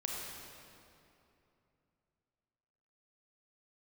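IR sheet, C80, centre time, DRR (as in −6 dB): 0.5 dB, 131 ms, −2.0 dB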